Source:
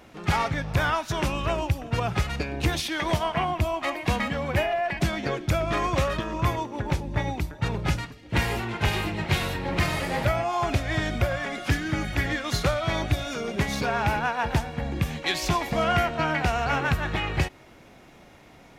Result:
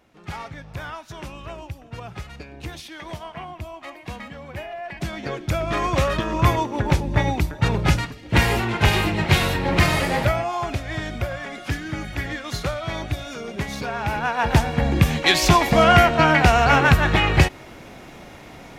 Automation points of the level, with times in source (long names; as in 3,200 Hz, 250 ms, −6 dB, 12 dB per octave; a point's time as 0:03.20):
0:04.60 −9.5 dB
0:05.29 −1 dB
0:06.46 +7 dB
0:10.01 +7 dB
0:10.75 −2 dB
0:14.00 −2 dB
0:14.67 +9.5 dB